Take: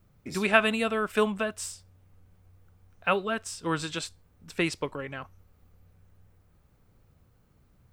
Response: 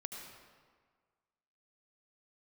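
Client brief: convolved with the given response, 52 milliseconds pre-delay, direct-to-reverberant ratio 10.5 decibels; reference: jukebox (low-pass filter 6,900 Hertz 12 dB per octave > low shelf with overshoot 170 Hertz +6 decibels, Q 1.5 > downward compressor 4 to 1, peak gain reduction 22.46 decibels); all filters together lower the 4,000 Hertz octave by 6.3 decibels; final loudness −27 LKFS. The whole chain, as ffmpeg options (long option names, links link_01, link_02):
-filter_complex "[0:a]equalizer=frequency=4000:width_type=o:gain=-9,asplit=2[link_01][link_02];[1:a]atrim=start_sample=2205,adelay=52[link_03];[link_02][link_03]afir=irnorm=-1:irlink=0,volume=-9dB[link_04];[link_01][link_04]amix=inputs=2:normalize=0,lowpass=6900,lowshelf=frequency=170:width_type=q:width=1.5:gain=6,acompressor=threshold=-43dB:ratio=4,volume=19.5dB"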